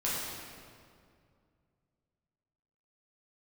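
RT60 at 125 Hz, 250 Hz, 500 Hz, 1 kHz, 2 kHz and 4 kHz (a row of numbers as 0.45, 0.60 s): 3.1, 2.7, 2.4, 2.1, 1.8, 1.5 s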